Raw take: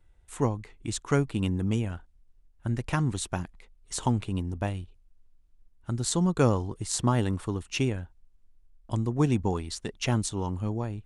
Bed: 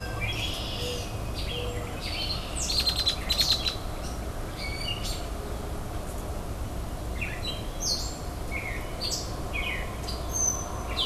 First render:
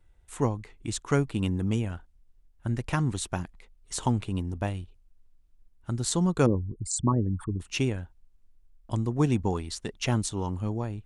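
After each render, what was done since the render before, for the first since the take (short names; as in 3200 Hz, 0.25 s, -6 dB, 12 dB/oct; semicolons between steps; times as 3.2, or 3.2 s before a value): 6.46–7.6 formant sharpening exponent 3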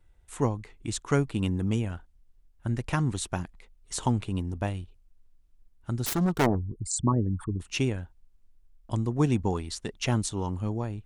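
6.06–6.58 self-modulated delay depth 0.96 ms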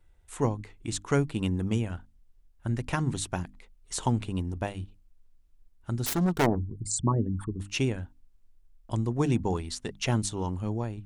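dynamic EQ 1200 Hz, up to -3 dB, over -52 dBFS, Q 7; notches 50/100/150/200/250/300 Hz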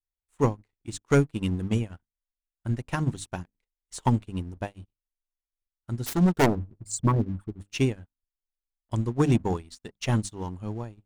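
sample leveller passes 2; upward expander 2.5:1, over -37 dBFS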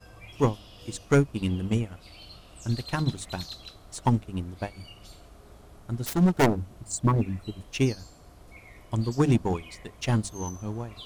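add bed -16.5 dB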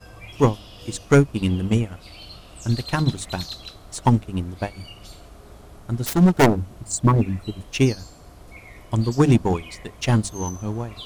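gain +6 dB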